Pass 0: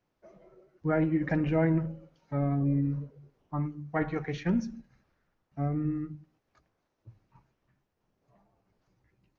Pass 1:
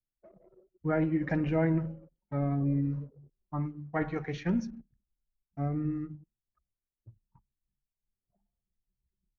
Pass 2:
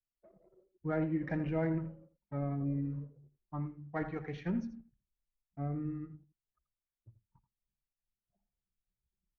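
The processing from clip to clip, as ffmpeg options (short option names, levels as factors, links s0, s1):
-af "anlmdn=0.000631,volume=0.841"
-af "adynamicsmooth=sensitivity=3:basefreq=4500,aecho=1:1:83:0.211,volume=0.531"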